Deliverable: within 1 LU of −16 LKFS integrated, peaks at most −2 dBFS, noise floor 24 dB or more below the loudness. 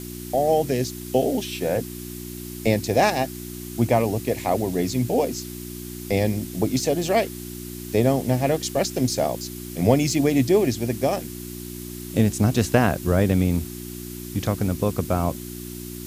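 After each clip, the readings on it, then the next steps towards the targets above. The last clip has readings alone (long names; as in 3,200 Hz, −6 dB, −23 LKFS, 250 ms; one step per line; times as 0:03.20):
mains hum 60 Hz; hum harmonics up to 360 Hz; level of the hum −33 dBFS; background noise floor −35 dBFS; target noise floor −47 dBFS; integrated loudness −23.0 LKFS; sample peak −4.5 dBFS; target loudness −16.0 LKFS
→ hum removal 60 Hz, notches 6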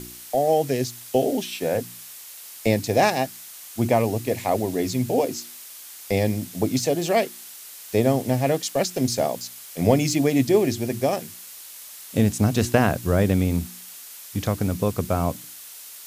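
mains hum none found; background noise floor −42 dBFS; target noise floor −47 dBFS
→ broadband denoise 6 dB, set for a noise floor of −42 dBFS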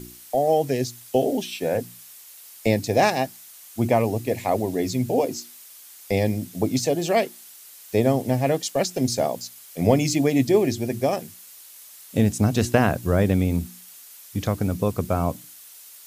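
background noise floor −46 dBFS; target noise floor −48 dBFS
→ broadband denoise 6 dB, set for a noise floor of −46 dBFS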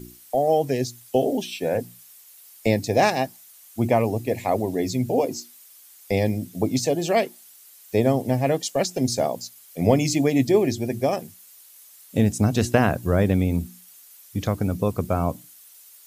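background noise floor −50 dBFS; integrated loudness −23.5 LKFS; sample peak −4.5 dBFS; target loudness −16.0 LKFS
→ level +7.5 dB
brickwall limiter −2 dBFS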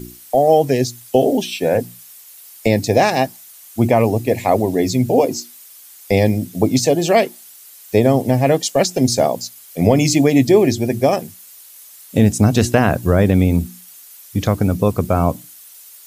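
integrated loudness −16.5 LKFS; sample peak −2.0 dBFS; background noise floor −42 dBFS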